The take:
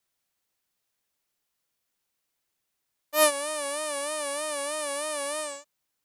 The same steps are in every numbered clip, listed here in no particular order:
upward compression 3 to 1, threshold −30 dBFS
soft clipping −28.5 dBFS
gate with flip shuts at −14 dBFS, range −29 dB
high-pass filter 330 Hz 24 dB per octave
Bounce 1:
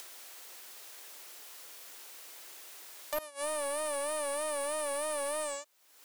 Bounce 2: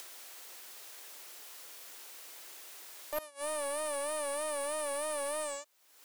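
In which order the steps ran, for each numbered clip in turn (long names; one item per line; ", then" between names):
gate with flip, then high-pass filter, then soft clipping, then upward compression
gate with flip, then upward compression, then high-pass filter, then soft clipping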